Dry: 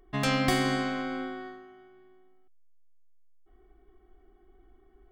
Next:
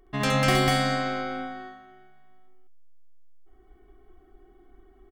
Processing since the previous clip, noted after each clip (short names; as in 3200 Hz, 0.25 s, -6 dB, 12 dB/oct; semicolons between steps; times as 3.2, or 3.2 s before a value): loudspeakers at several distances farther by 23 m -3 dB, 67 m 0 dB; gain +1 dB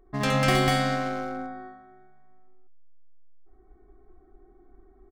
Wiener smoothing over 15 samples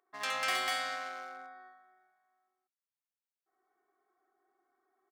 HPF 1000 Hz 12 dB/oct; gain -5.5 dB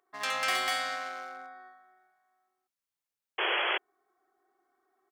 painted sound noise, 3.38–3.78, 330–3400 Hz -32 dBFS; gain +3 dB